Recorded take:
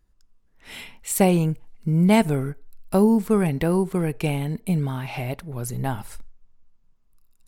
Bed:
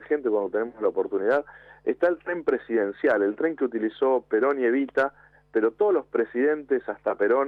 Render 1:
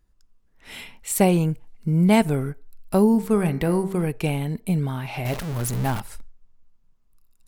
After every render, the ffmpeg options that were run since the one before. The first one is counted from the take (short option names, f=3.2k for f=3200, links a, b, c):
-filter_complex "[0:a]asettb=1/sr,asplit=3[a][b][c];[a]atrim=end=3.124[d];[b]atrim=start=3.12:end=4.07,asetpts=PTS-STARTPTS,afade=t=in:d=0.004:c=qsin,afade=t=out:st=0.946:d=0.004:c=qsin,bandreject=f=64.58:t=h:w=4,bandreject=f=129.16:t=h:w=4,bandreject=f=193.74:t=h:w=4,bandreject=f=258.32:t=h:w=4,bandreject=f=322.9:t=h:w=4,bandreject=f=387.48:t=h:w=4,bandreject=f=452.06:t=h:w=4,bandreject=f=516.64:t=h:w=4,bandreject=f=581.22:t=h:w=4,bandreject=f=645.8:t=h:w=4,bandreject=f=710.38:t=h:w=4,bandreject=f=774.96:t=h:w=4,bandreject=f=839.54:t=h:w=4,bandreject=f=904.12:t=h:w=4,bandreject=f=968.7:t=h:w=4,bandreject=f=1.03328k:t=h:w=4,bandreject=f=1.09786k:t=h:w=4,bandreject=f=1.16244k:t=h:w=4,bandreject=f=1.22702k:t=h:w=4,bandreject=f=1.2916k:t=h:w=4,bandreject=f=1.35618k:t=h:w=4,bandreject=f=1.42076k:t=h:w=4,bandreject=f=1.48534k:t=h:w=4,bandreject=f=1.54992k:t=h:w=4,bandreject=f=1.6145k:t=h:w=4,bandreject=f=1.67908k:t=h:w=4,bandreject=f=1.74366k:t=h:w=4,bandreject=f=1.80824k:t=h:w=4,bandreject=f=1.87282k:t=h:w=4,bandreject=f=1.9374k:t=h:w=4,bandreject=f=2.00198k:t=h:w=4,bandreject=f=2.06656k:t=h:w=4,bandreject=f=2.13114k:t=h:w=4,bandreject=f=2.19572k:t=h:w=4,bandreject=f=2.2603k:t=h:w=4,bandreject=f=2.32488k:t=h:w=4,bandreject=f=2.38946k:t=h:w=4,bandreject=f=2.45404k:t=h:w=4[e];[c]atrim=start=4.066[f];[d][e]acrossfade=d=0.004:c1=hsin:c2=qsin[g];[g][f]acrossfade=d=0.004:c1=qsin:c2=hsin,asettb=1/sr,asplit=3[h][i][j];[h]atrim=end=5.254[k];[i]atrim=start=5.25:end=6,asetpts=PTS-STARTPTS,afade=t=in:d=0.004:c=qsin,afade=t=out:st=0.746:d=0.004:c=qsin,aeval=exprs='val(0)+0.5*0.0447*sgn(val(0))':c=same[l];[j]atrim=start=5.996[m];[k][l]acrossfade=d=0.004:c1=hsin:c2=qsin[n];[n][m]acrossfade=d=0.004:c1=qsin:c2=hsin"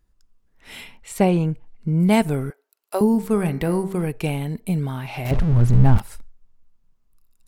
-filter_complex "[0:a]asplit=3[a][b][c];[a]afade=t=out:st=0.96:d=0.02[d];[b]aemphasis=mode=reproduction:type=50fm,afade=t=in:st=0.96:d=0.02,afade=t=out:st=1.99:d=0.02[e];[c]afade=t=in:st=1.99:d=0.02[f];[d][e][f]amix=inputs=3:normalize=0,asettb=1/sr,asplit=3[g][h][i];[g]atrim=end=2.504[j];[h]atrim=start=2.5:end=3.01,asetpts=PTS-STARTPTS,afade=t=in:d=0.004:c=qsin,afade=t=out:st=0.506:d=0.004:c=qsin,highpass=f=420:w=0.5412,highpass=f=420:w=1.3066[k];[i]atrim=start=3.006[l];[j][k]acrossfade=d=0.004:c1=hsin:c2=qsin[m];[m][l]acrossfade=d=0.004:c1=qsin:c2=hsin,asettb=1/sr,asplit=3[n][o][p];[n]atrim=end=5.314[q];[o]atrim=start=5.31:end=5.98,asetpts=PTS-STARTPTS,afade=t=in:d=0.004:c=qsin,afade=t=out:st=0.666:d=0.004:c=qsin,aemphasis=mode=reproduction:type=riaa[r];[p]atrim=start=5.976[s];[q][r]acrossfade=d=0.004:c1=hsin:c2=qsin[t];[t][s]acrossfade=d=0.004:c1=qsin:c2=hsin"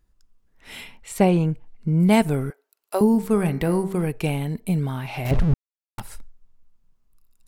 -filter_complex "[0:a]asplit=3[a][b][c];[a]atrim=end=5.54,asetpts=PTS-STARTPTS,afade=t=out:st=5.536:d=0.004:c=hsin[d];[b]atrim=start=5.54:end=5.98,asetpts=PTS-STARTPTS,volume=0[e];[c]atrim=start=5.98,asetpts=PTS-STARTPTS,afade=t=in:d=0.004:c=hsin[f];[d][e][f]concat=n=3:v=0:a=1"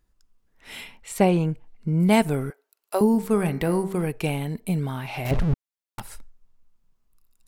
-af "lowshelf=f=220:g=-4"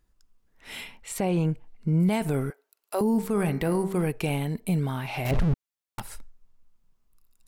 -af "alimiter=limit=-16.5dB:level=0:latency=1:release=15"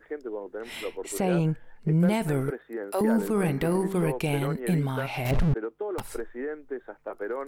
-filter_complex "[1:a]volume=-11dB[a];[0:a][a]amix=inputs=2:normalize=0"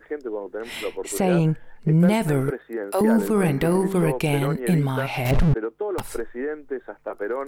-af "volume=5dB"